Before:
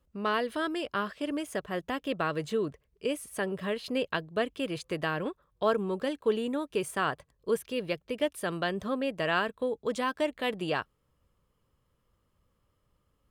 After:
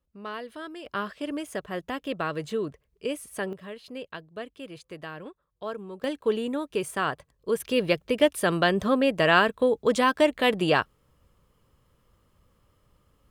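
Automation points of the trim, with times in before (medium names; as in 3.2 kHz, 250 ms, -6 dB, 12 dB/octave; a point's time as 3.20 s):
-7.5 dB
from 0.86 s +0.5 dB
from 3.53 s -8 dB
from 6.04 s +2 dB
from 7.60 s +8.5 dB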